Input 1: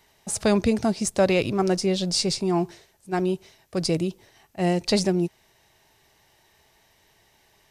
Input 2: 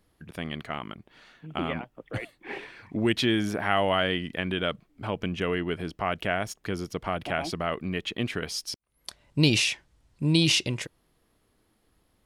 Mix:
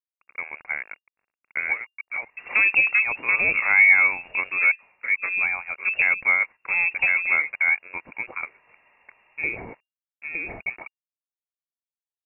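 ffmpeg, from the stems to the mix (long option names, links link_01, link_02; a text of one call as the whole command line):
ffmpeg -i stem1.wav -i stem2.wav -filter_complex "[0:a]dynaudnorm=framelen=110:gausssize=9:maxgain=4dB,adelay=2100,volume=-1dB[link_01];[1:a]acrossover=split=3000[link_02][link_03];[link_03]acompressor=threshold=-36dB:ratio=4:attack=1:release=60[link_04];[link_02][link_04]amix=inputs=2:normalize=0,highpass=frequency=570:width_type=q:width=6.7,aeval=exprs='sgn(val(0))*max(abs(val(0))-0.00668,0)':channel_layout=same,volume=-1dB,asplit=2[link_05][link_06];[link_06]apad=whole_len=432221[link_07];[link_01][link_07]sidechaincompress=threshold=-27dB:ratio=16:attack=16:release=567[link_08];[link_08][link_05]amix=inputs=2:normalize=0,lowpass=frequency=2400:width_type=q:width=0.5098,lowpass=frequency=2400:width_type=q:width=0.6013,lowpass=frequency=2400:width_type=q:width=0.9,lowpass=frequency=2400:width_type=q:width=2.563,afreqshift=-2800" out.wav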